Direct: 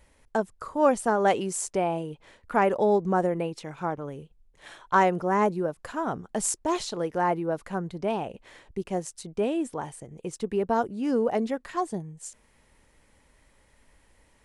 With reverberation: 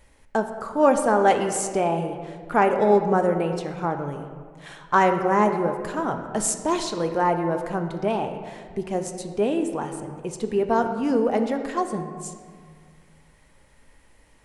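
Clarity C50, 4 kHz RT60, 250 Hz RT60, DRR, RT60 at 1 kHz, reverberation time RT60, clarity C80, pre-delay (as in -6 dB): 7.5 dB, 1.0 s, 2.1 s, 5.5 dB, 1.8 s, 1.9 s, 9.0 dB, 3 ms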